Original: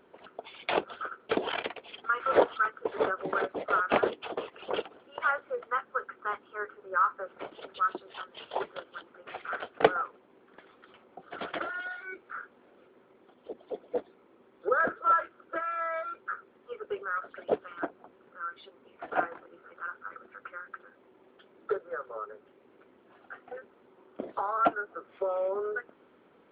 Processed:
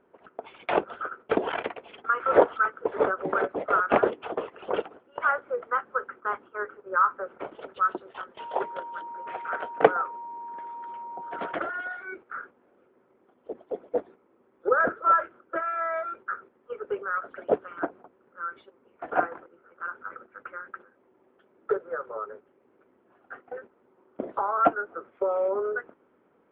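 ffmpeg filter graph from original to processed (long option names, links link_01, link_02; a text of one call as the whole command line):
ffmpeg -i in.wav -filter_complex "[0:a]asettb=1/sr,asplit=3[link_01][link_02][link_03];[link_01]atrim=end=8.394[link_04];[link_02]atrim=start=8.39:end=11.53,asetpts=PTS-STARTPTS,afade=type=in:duration=0.004:curve=qsin,afade=type=out:start_time=3.136:duration=0.004:curve=qsin,highpass=frequency=150:poles=1,aeval=exprs='val(0)+0.01*sin(2*PI*940*n/s)':channel_layout=same[link_05];[link_03]atrim=start=11.526[link_06];[link_04][link_05]acrossfade=duration=0.004:curve1=hsin:curve2=qsin[link_07];[link_07][link_06]acrossfade=duration=0.004:curve1=qsin:curve2=hsin,agate=range=-8dB:threshold=-49dB:ratio=16:detection=peak,lowpass=1900,volume=4.5dB" out.wav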